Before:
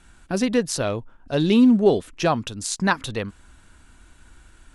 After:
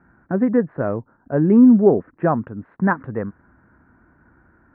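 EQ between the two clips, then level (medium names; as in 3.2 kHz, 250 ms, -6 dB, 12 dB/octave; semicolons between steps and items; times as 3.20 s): high-pass 140 Hz 12 dB/octave; steep low-pass 1.8 kHz 48 dB/octave; bass shelf 330 Hz +7.5 dB; 0.0 dB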